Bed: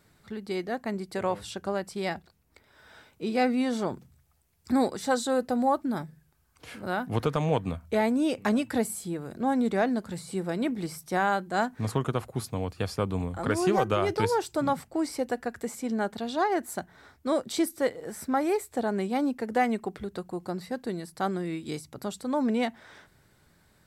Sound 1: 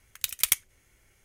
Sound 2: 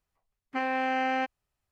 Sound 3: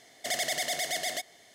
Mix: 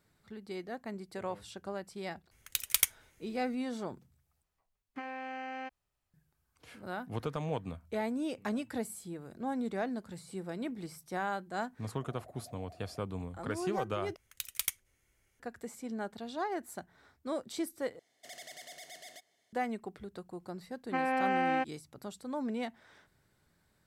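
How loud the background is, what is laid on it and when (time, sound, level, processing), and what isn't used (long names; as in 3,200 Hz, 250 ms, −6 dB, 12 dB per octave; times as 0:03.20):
bed −9.5 dB
0:02.31: mix in 1 −3.5 dB
0:04.43: overwrite with 2 −2 dB + downward compressor 12 to 1, threshold −34 dBFS
0:11.78: mix in 3 −18 dB + inverse Chebyshev low-pass filter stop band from 3,200 Hz, stop band 60 dB
0:14.16: overwrite with 1 −10 dB
0:17.99: overwrite with 3 −18 dB
0:20.38: mix in 2 −1 dB + high-shelf EQ 2,700 Hz −9 dB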